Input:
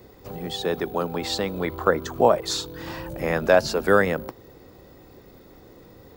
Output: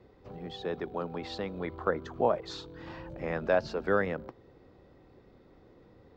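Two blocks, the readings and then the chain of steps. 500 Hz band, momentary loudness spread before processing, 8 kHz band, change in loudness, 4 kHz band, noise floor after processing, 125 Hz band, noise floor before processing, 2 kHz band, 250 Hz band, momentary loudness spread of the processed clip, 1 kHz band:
-9.0 dB, 15 LU, under -20 dB, -9.0 dB, -14.5 dB, -59 dBFS, -8.5 dB, -50 dBFS, -10.0 dB, -9.0 dB, 16 LU, -9.5 dB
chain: distance through air 190 m; trim -8.5 dB

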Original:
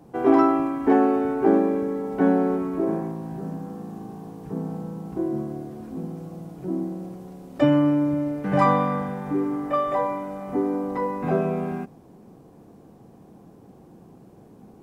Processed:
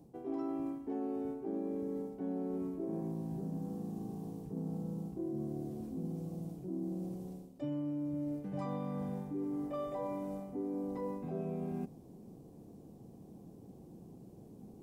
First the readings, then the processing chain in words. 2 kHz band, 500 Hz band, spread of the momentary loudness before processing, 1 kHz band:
under -25 dB, -16.5 dB, 16 LU, -22.0 dB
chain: peaking EQ 1.5 kHz -15 dB 1.9 oct; reverse; compression 10:1, threshold -32 dBFS, peak gain reduction 18 dB; reverse; trim -3 dB

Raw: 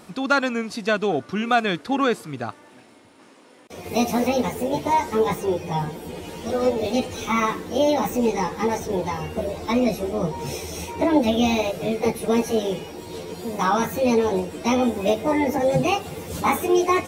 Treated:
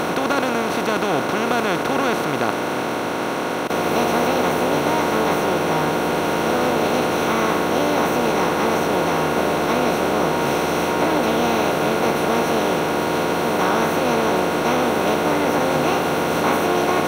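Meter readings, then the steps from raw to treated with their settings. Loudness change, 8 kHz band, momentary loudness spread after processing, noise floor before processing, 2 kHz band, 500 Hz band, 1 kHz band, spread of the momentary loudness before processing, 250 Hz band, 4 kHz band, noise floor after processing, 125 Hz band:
+3.5 dB, +4.5 dB, 2 LU, -50 dBFS, +6.5 dB, +3.5 dB, +5.0 dB, 11 LU, +2.0 dB, +5.5 dB, -23 dBFS, +3.5 dB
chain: spectral levelling over time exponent 0.2; trim -8.5 dB

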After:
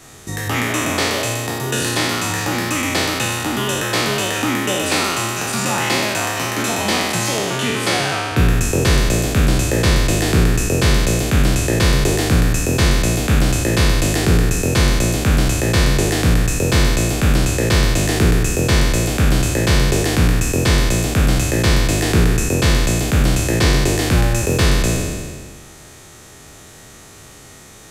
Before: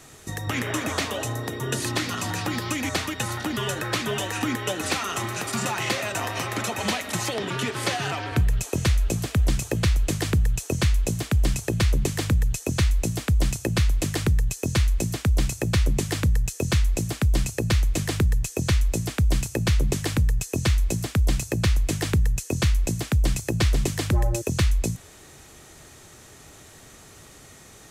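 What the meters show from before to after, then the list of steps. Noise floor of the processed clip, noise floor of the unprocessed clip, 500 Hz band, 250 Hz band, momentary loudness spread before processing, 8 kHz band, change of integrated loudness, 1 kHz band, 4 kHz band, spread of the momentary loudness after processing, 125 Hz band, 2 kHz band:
-41 dBFS, -48 dBFS, +10.5 dB, +9.5 dB, 4 LU, +9.5 dB, +8.0 dB, +9.0 dB, +10.0 dB, 4 LU, +6.5 dB, +10.0 dB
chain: spectral sustain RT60 1.78 s; trim +3.5 dB

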